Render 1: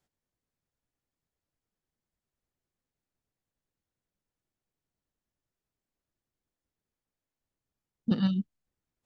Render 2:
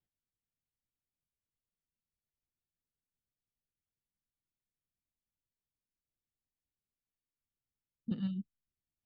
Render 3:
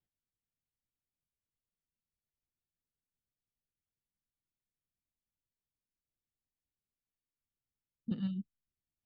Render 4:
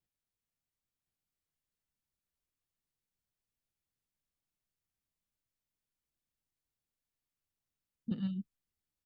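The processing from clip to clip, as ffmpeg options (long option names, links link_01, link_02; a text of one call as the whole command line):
ffmpeg -i in.wav -af "lowpass=frequency=3300:width=0.5412,lowpass=frequency=3300:width=1.3066,equalizer=frequency=960:width=0.45:gain=-11,volume=-7dB" out.wav
ffmpeg -i in.wav -af anull out.wav
ffmpeg -i in.wav -af "aecho=1:1:1059:0.668" out.wav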